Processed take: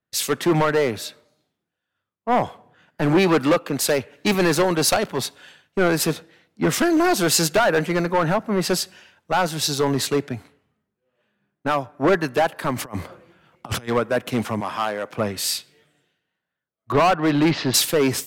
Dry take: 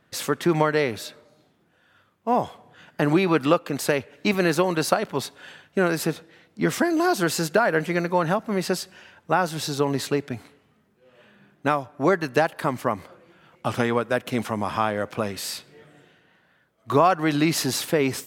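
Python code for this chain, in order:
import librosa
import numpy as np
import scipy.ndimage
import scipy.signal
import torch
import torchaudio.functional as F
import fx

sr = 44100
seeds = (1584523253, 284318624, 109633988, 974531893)

y = fx.over_compress(x, sr, threshold_db=-31.0, ratio=-0.5, at=(12.76, 13.87), fade=0.02)
y = fx.lowpass(y, sr, hz=3800.0, slope=24, at=(16.92, 17.74))
y = np.clip(10.0 ** (19.0 / 20.0) * y, -1.0, 1.0) / 10.0 ** (19.0 / 20.0)
y = fx.highpass(y, sr, hz=420.0, slope=6, at=(14.6, 15.1))
y = fx.band_widen(y, sr, depth_pct=70)
y = y * librosa.db_to_amplitude(5.0)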